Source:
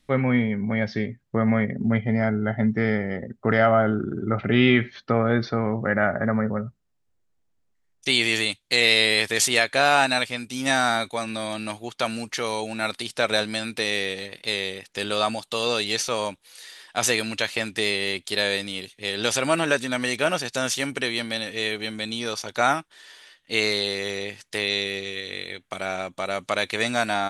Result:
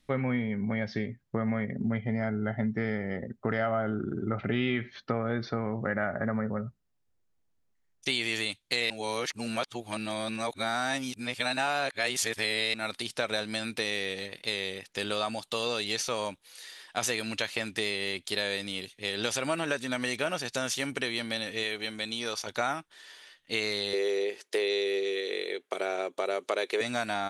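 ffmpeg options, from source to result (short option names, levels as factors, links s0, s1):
-filter_complex "[0:a]asettb=1/sr,asplit=3[s0][s1][s2];[s0]atrim=end=21.634[s3];[s1]atrim=start=21.63:end=22.47,asetpts=PTS-STARTPTS,afade=t=in:d=0.004:c=qsin,afade=t=out:st=0.836:d=0.004:c=qsin,equalizer=f=130:t=o:w=2.5:g=-6[s4];[s2]atrim=start=22.466[s5];[s3][s4]acrossfade=d=0.004:c1=hsin:c2=qsin[s6];[s6][s5]acrossfade=d=0.004:c1=qsin:c2=hsin,asettb=1/sr,asplit=3[s7][s8][s9];[s7]atrim=end=23.934[s10];[s8]atrim=start=23.93:end=26.81,asetpts=PTS-STARTPTS,afade=t=in:d=0.004:c=qsin,afade=t=out:st=2.876:d=0.004:c=qsin,highpass=f=400:t=q:w=4.6[s11];[s9]atrim=start=26.806[s12];[s10][s11]acrossfade=d=0.004:c1=hsin:c2=qsin[s13];[s13][s12]acrossfade=d=0.004:c1=qsin:c2=hsin,asplit=3[s14][s15][s16];[s14]atrim=end=8.902[s17];[s15]atrim=start=8.898:end=12.742,asetpts=PTS-STARTPTS,areverse[s18];[s16]atrim=start=12.738[s19];[s17][s18]acrossfade=d=0.004:c1=hsin:c2=hsin[s20];[s20][s19]acrossfade=d=0.004:c1=hsin:c2=hsin,equalizer=f=8000:w=6.2:g=-2,acompressor=threshold=0.0631:ratio=3,volume=0.708"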